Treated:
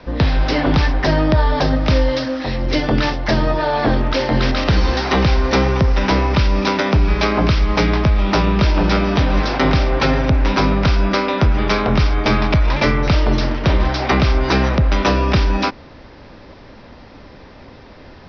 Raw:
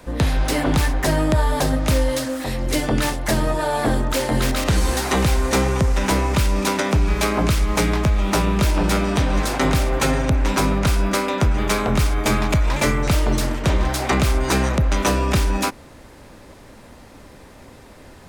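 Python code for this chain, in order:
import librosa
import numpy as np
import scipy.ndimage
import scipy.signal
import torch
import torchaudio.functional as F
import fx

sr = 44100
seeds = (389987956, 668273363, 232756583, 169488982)

y = scipy.signal.sosfilt(scipy.signal.butter(16, 5600.0, 'lowpass', fs=sr, output='sos'), x)
y = fx.dmg_noise_band(y, sr, seeds[0], low_hz=710.0, high_hz=2700.0, level_db=-44.0, at=(3.56, 4.88), fade=0.02)
y = F.gain(torch.from_numpy(y), 3.5).numpy()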